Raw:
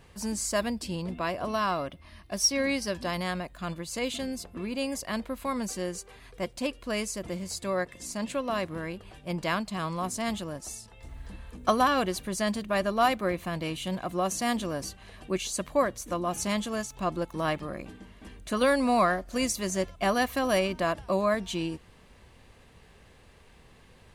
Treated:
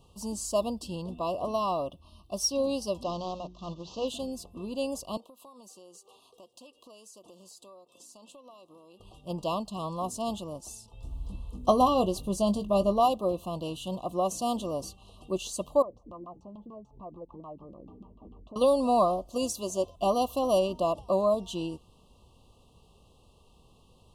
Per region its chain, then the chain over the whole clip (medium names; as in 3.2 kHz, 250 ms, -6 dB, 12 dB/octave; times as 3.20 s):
3.03–4.08 s: CVSD coder 32 kbps + hum notches 60/120/180/240/300/360 Hz
5.17–9.00 s: high-pass 360 Hz + compression 5:1, threshold -45 dBFS
10.93–13.00 s: bass shelf 220 Hz +9.5 dB + doubling 20 ms -11 dB
15.82–18.56 s: compression 4:1, threshold -42 dBFS + LFO low-pass saw down 6.8 Hz 220–1800 Hz
19.27–19.97 s: high-pass 65 Hz + peaking EQ 180 Hz -8 dB 0.24 oct
whole clip: Chebyshev band-stop 1.2–2.7 kHz, order 5; dynamic bell 590 Hz, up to +7 dB, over -41 dBFS, Q 1.1; trim -3.5 dB